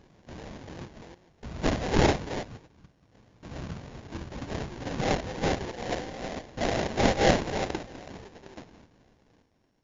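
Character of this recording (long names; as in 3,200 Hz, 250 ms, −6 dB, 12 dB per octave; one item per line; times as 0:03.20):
a buzz of ramps at a fixed pitch in blocks of 16 samples
sample-and-hold tremolo, depth 95%
aliases and images of a low sample rate 1,300 Hz, jitter 20%
MP2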